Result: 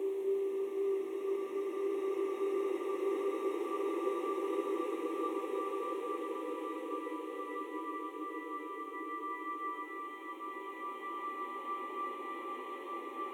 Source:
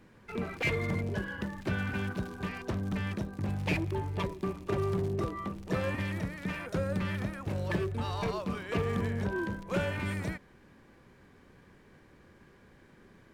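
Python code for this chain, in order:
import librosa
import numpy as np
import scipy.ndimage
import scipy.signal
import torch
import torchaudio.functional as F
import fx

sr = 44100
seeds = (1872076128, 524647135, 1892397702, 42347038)

y = fx.fixed_phaser(x, sr, hz=990.0, stages=8)
y = fx.paulstretch(y, sr, seeds[0], factor=36.0, window_s=0.25, from_s=5.11)
y = scipy.signal.sosfilt(scipy.signal.butter(6, 280.0, 'highpass', fs=sr, output='sos'), y)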